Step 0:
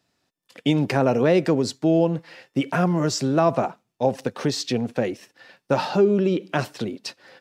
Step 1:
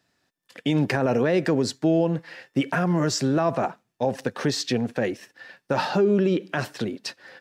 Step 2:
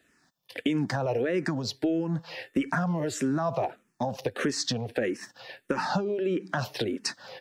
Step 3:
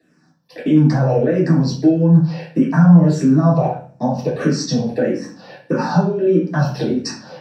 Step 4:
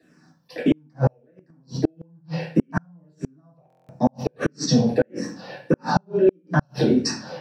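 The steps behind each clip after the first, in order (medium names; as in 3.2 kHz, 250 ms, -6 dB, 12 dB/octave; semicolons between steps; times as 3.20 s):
peaking EQ 1.7 kHz +6.5 dB 0.37 oct; peak limiter -12.5 dBFS, peak gain reduction 6.5 dB
compression 6:1, threshold -30 dBFS, peak gain reduction 13 dB; barber-pole phaser -1.6 Hz; trim +7.5 dB
reverberation RT60 0.45 s, pre-delay 3 ms, DRR -9 dB; trim -10 dB
inverted gate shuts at -8 dBFS, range -42 dB; buffer glitch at 3.68 s, samples 1024, times 8; trim +1 dB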